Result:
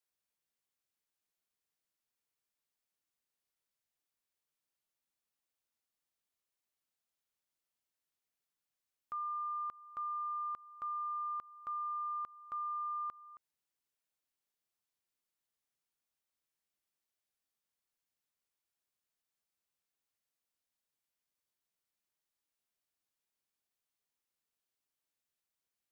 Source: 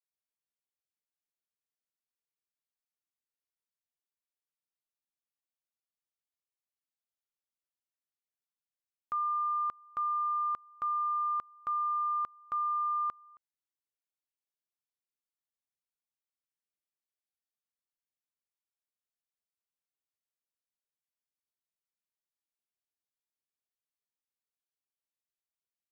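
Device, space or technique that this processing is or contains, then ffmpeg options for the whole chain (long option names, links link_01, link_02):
stacked limiters: -af "alimiter=level_in=11dB:limit=-24dB:level=0:latency=1,volume=-11dB,alimiter=level_in=15.5dB:limit=-24dB:level=0:latency=1:release=380,volume=-15.5dB,volume=4dB"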